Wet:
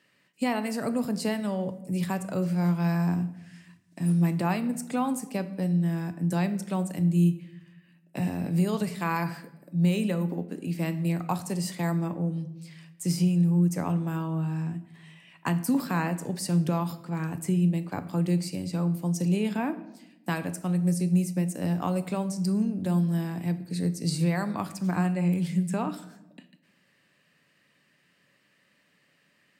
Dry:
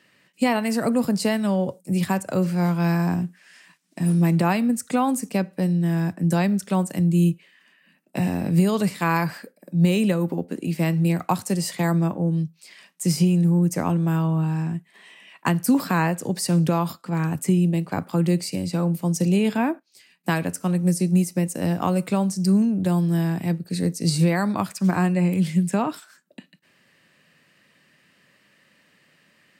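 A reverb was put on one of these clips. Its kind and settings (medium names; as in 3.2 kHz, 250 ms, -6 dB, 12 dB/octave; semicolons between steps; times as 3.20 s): simulated room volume 350 m³, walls mixed, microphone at 0.33 m; trim -7 dB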